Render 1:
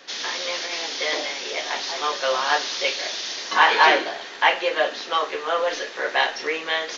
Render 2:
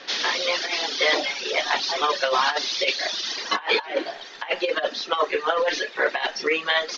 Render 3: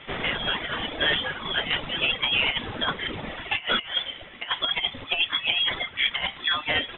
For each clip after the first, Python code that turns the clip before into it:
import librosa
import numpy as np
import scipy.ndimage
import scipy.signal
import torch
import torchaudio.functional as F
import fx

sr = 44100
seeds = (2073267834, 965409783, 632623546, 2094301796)

y1 = scipy.signal.sosfilt(scipy.signal.butter(4, 5600.0, 'lowpass', fs=sr, output='sos'), x)
y1 = fx.dereverb_blind(y1, sr, rt60_s=1.3)
y1 = fx.over_compress(y1, sr, threshold_db=-24.0, ratio=-0.5)
y1 = F.gain(torch.from_numpy(y1), 3.0).numpy()
y2 = fx.cvsd(y1, sr, bps=64000)
y2 = fx.freq_invert(y2, sr, carrier_hz=3800)
y2 = F.gain(torch.from_numpy(y2), -2.0).numpy()